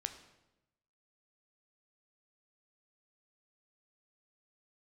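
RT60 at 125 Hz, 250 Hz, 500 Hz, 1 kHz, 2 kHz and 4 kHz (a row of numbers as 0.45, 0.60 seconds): 1.2, 1.1, 1.0, 0.90, 0.80, 0.75 seconds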